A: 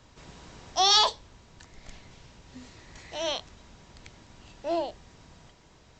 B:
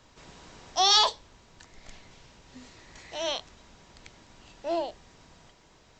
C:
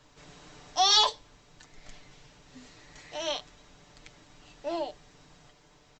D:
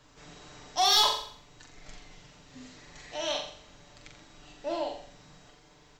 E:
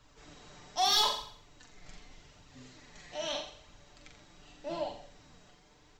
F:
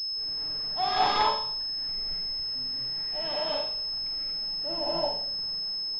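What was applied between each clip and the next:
bell 82 Hz -5.5 dB 2.8 oct
comb 6.8 ms, depth 56%; gain -2.5 dB
soft clip -17 dBFS, distortion -15 dB; on a send: flutter echo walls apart 7.4 m, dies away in 0.55 s
octaver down 1 oct, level -4 dB; flange 0.81 Hz, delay 0.7 ms, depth 5.2 ms, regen +55%
non-linear reverb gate 0.26 s rising, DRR -6 dB; pulse-width modulation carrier 5200 Hz

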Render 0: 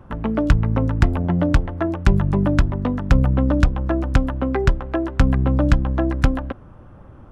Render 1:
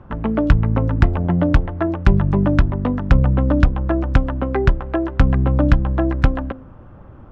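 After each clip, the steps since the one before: Bessel low-pass 3400 Hz, order 2; de-hum 259.9 Hz, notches 2; gain +2 dB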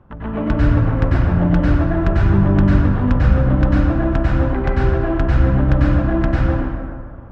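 plate-style reverb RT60 1.9 s, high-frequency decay 0.5×, pre-delay 85 ms, DRR -7.5 dB; gain -7.5 dB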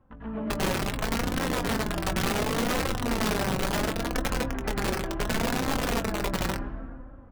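wrapped overs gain 9.5 dB; flange 0.7 Hz, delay 3.7 ms, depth 1.7 ms, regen +37%; doubler 22 ms -12.5 dB; gain -8.5 dB

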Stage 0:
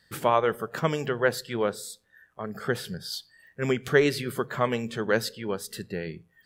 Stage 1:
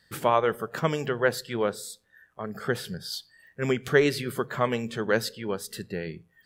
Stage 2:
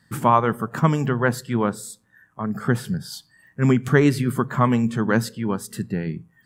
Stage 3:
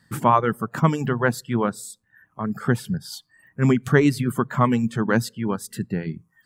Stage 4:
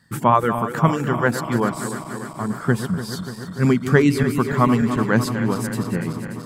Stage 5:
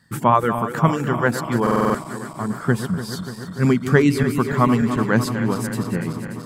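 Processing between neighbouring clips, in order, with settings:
nothing audible
graphic EQ 125/250/500/1000/4000/8000 Hz +11/+11/-5/+9/-5/+5 dB
reverb removal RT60 0.5 s
regenerating reverse delay 0.146 s, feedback 84%, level -10.5 dB; gain +1.5 dB
stuck buffer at 1.62, samples 2048, times 6

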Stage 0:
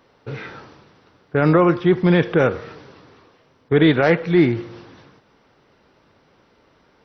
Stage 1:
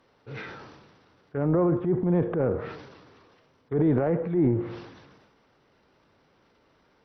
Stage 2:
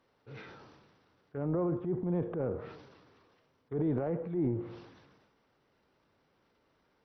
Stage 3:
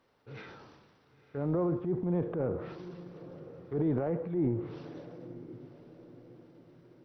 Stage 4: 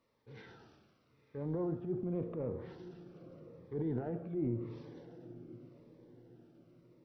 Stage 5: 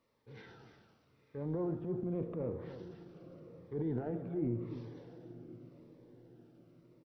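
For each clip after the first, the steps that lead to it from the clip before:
treble ducked by the level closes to 700 Hz, closed at -15 dBFS; transient shaper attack -6 dB, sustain +8 dB; gain -7 dB
dynamic EQ 1800 Hz, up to -4 dB, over -52 dBFS, Q 1.7; gain -8.5 dB
diffused feedback echo 0.993 s, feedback 42%, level -15 dB; gain +1.5 dB
reverb RT60 1.0 s, pre-delay 4 ms, DRR 13 dB; cascading phaser falling 0.87 Hz; gain -5.5 dB
echo 0.298 s -12 dB

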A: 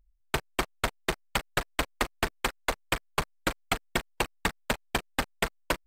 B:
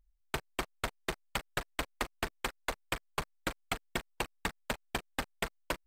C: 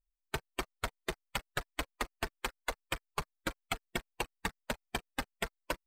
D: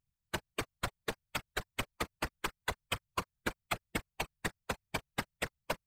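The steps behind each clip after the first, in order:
compressor 1.5:1, threshold -30 dBFS, peak gain reduction 3 dB; gain -4.5 dB
per-bin expansion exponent 1.5; gain +1.5 dB
whisperiser

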